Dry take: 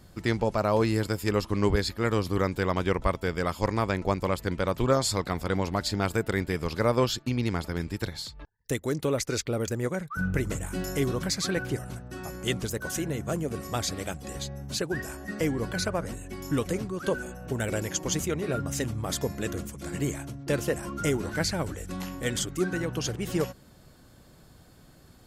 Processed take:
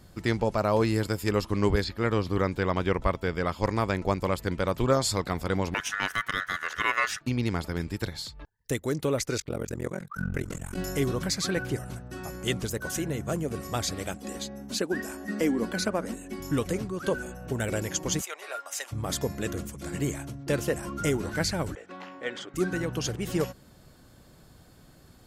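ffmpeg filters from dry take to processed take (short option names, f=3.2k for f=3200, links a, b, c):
-filter_complex "[0:a]asettb=1/sr,asplit=3[a][b][c];[a]atrim=end=1.844[d];[b]atrim=start=1.84:end=3.64,asetpts=PTS-STARTPTS,afade=t=in:d=0.004:c=qsin,afade=t=out:st=1.796:d=0.004:c=qsin,acrossover=split=5200[e][f];[f]acompressor=threshold=-58dB:ratio=4:attack=1:release=60[g];[e][g]amix=inputs=2:normalize=0[h];[c]atrim=start=3.636[i];[d][h]acrossfade=d=0.004:c1=hsin:c2=qsin[j];[j][i]acrossfade=d=0.004:c1=qsin:c2=hsin,asettb=1/sr,asplit=3[k][l][m];[k]atrim=end=5.744[n];[l]atrim=start=5.74:end=7.21,asetpts=PTS-STARTPTS,afade=t=in:d=0.004:c=qsin,afade=t=out:st=1.466:d=0.004:c=qsin,aeval=exprs='val(0)*sin(2*PI*1600*n/s)':c=same[o];[m]atrim=start=7.206[p];[n][o]acrossfade=d=0.004:c1=hsin:c2=qsin[q];[q][p]acrossfade=d=0.004:c1=qsin:c2=hsin,asplit=3[r][s][t];[r]afade=t=out:st=9.37:d=0.02[u];[s]tremolo=f=44:d=1,afade=t=in:st=9.37:d=0.02,afade=t=out:st=10.76:d=0.02[v];[t]afade=t=in:st=10.76:d=0.02[w];[u][v][w]amix=inputs=3:normalize=0,asettb=1/sr,asplit=3[x][y][z];[x]atrim=end=14.144[aa];[y]atrim=start=14.14:end=16.4,asetpts=PTS-STARTPTS,afade=t=in:d=0.004:c=qsin,afade=t=out:st=2.256:d=0.004:c=qsin,lowshelf=f=170:t=q:w=3:g=-8[ab];[z]atrim=start=16.396[ac];[aa][ab]acrossfade=d=0.004:c1=hsin:c2=qsin[ad];[ad][ac]acrossfade=d=0.004:c1=qsin:c2=hsin,asplit=3[ae][af][ag];[ae]afade=t=out:st=18.2:d=0.02[ah];[af]highpass=f=680:w=0.5412,highpass=f=680:w=1.3066,afade=t=in:st=18.2:d=0.02,afade=t=out:st=18.91:d=0.02[ai];[ag]afade=t=in:st=18.91:d=0.02[aj];[ah][ai][aj]amix=inputs=3:normalize=0,asettb=1/sr,asplit=3[ak][al][am];[ak]atrim=end=21.754[an];[al]atrim=start=21.75:end=22.54,asetpts=PTS-STARTPTS,afade=t=in:d=0.004:c=qsin,afade=t=out:st=0.786:d=0.004:c=qsin,highpass=430,lowpass=2.6k[ao];[am]atrim=start=22.536[ap];[an][ao]acrossfade=d=0.004:c1=hsin:c2=qsin[aq];[aq][ap]acrossfade=d=0.004:c1=qsin:c2=hsin"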